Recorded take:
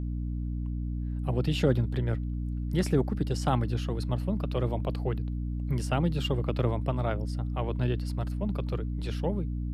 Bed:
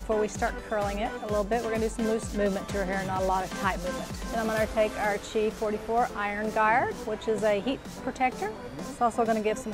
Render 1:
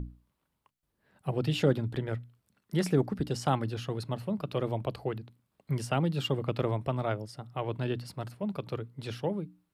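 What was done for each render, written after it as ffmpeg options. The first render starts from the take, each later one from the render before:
-af "bandreject=f=60:t=h:w=6,bandreject=f=120:t=h:w=6,bandreject=f=180:t=h:w=6,bandreject=f=240:t=h:w=6,bandreject=f=300:t=h:w=6"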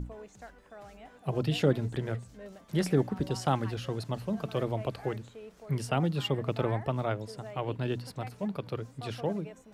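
-filter_complex "[1:a]volume=-20dB[a];[0:a][a]amix=inputs=2:normalize=0"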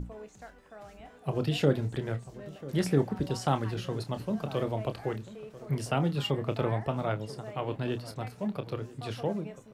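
-filter_complex "[0:a]asplit=2[a][b];[b]adelay=28,volume=-10.5dB[c];[a][c]amix=inputs=2:normalize=0,asplit=2[d][e];[e]adelay=991.3,volume=-17dB,highshelf=f=4k:g=-22.3[f];[d][f]amix=inputs=2:normalize=0"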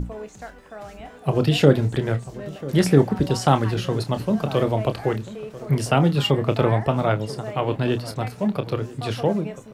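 -af "volume=10dB"

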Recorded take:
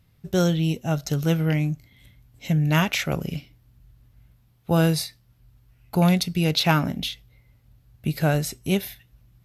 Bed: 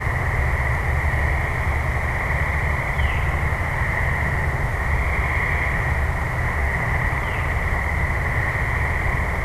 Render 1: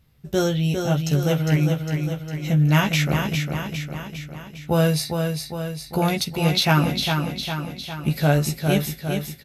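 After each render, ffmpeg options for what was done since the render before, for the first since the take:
-filter_complex "[0:a]asplit=2[a][b];[b]adelay=14,volume=-4dB[c];[a][c]amix=inputs=2:normalize=0,asplit=2[d][e];[e]aecho=0:1:405|810|1215|1620|2025|2430|2835|3240:0.531|0.303|0.172|0.0983|0.056|0.0319|0.0182|0.0104[f];[d][f]amix=inputs=2:normalize=0"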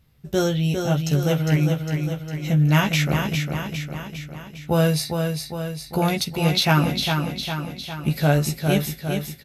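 -af anull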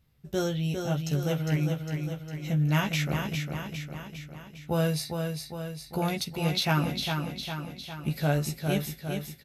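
-af "volume=-7.5dB"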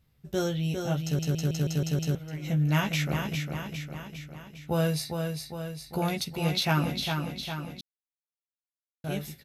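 -filter_complex "[0:a]asplit=10[a][b][c][d][e][f][g][h][i][j];[a]atrim=end=1.192[k];[b]atrim=start=1.028:end=1.192[l];[c]atrim=start=1.028:end=1.192[m];[d]atrim=start=1.028:end=1.192[n];[e]atrim=start=1.028:end=1.192[o];[f]atrim=start=1.028:end=1.192[p];[g]atrim=start=1.028:end=1.192[q];[h]atrim=start=2.148:end=7.81,asetpts=PTS-STARTPTS,afade=t=out:st=5.658:d=0.004:c=hsin[r];[i]atrim=start=7.81:end=9.04,asetpts=PTS-STARTPTS,volume=0[s];[j]atrim=start=9.04,asetpts=PTS-STARTPTS,afade=t=in:d=0.004:c=hsin[t];[k][l]acrossfade=d=0.004:c1=hsin:c2=hsin[u];[u][m]acrossfade=d=0.004:c1=hsin:c2=hsin[v];[v][n]acrossfade=d=0.004:c1=hsin:c2=hsin[w];[w][o]acrossfade=d=0.004:c1=hsin:c2=hsin[x];[x][p]acrossfade=d=0.004:c1=hsin:c2=hsin[y];[y][q]acrossfade=d=0.004:c1=hsin:c2=hsin[z];[r][s][t]concat=n=3:v=0:a=1[aa];[z][aa]acrossfade=d=0.004:c1=hsin:c2=hsin"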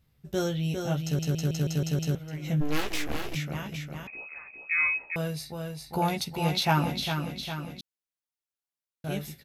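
-filter_complex "[0:a]asplit=3[a][b][c];[a]afade=t=out:st=2.6:d=0.02[d];[b]aeval=exprs='abs(val(0))':c=same,afade=t=in:st=2.6:d=0.02,afade=t=out:st=3.34:d=0.02[e];[c]afade=t=in:st=3.34:d=0.02[f];[d][e][f]amix=inputs=3:normalize=0,asettb=1/sr,asplit=3[g][h][i];[g]atrim=end=4.074[j];[h]atrim=start=4.07:end=5.16,asetpts=PTS-STARTPTS,afade=t=in:d=0.004:c=qsin,afade=t=out:st=1.086:d=0.004:c=qsin,lowpass=f=2.3k:t=q:w=0.5098,lowpass=f=2.3k:t=q:w=0.6013,lowpass=f=2.3k:t=q:w=0.9,lowpass=f=2.3k:t=q:w=2.563,afreqshift=-2700[k];[i]atrim=start=5.156[l];[j][k]acrossfade=d=0.004:c1=hsin:c2=qsin[m];[m][l]acrossfade=d=0.004:c1=qsin:c2=hsin,asettb=1/sr,asplit=3[n][o][p];[n]atrim=end=5.704[q];[o]atrim=start=5.7:end=7.01,asetpts=PTS-STARTPTS,afade=t=in:d=0.004:c=qsin,afade=t=out:st=1.306:d=0.004:c=qsin,equalizer=f=870:w=3.5:g=7.5[r];[p]atrim=start=7.006[s];[q][r]acrossfade=d=0.004:c1=hsin:c2=qsin[t];[t][s]acrossfade=d=0.004:c1=qsin:c2=hsin"

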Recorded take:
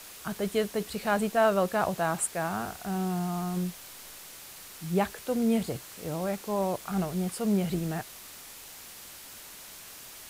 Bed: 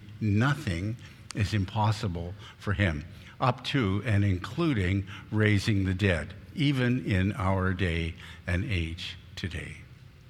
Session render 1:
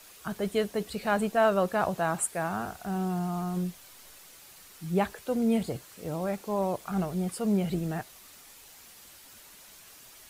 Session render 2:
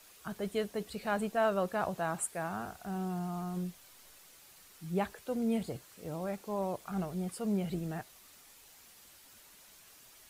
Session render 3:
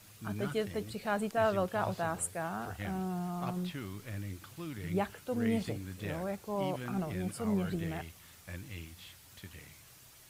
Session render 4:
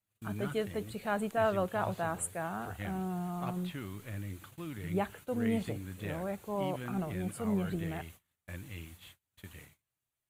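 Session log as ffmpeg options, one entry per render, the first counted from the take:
-af "afftdn=nr=7:nf=-47"
-af "volume=-6dB"
-filter_complex "[1:a]volume=-15.5dB[a];[0:a][a]amix=inputs=2:normalize=0"
-af "agate=range=-32dB:threshold=-51dB:ratio=16:detection=peak,equalizer=f=5.2k:t=o:w=0.44:g=-11"

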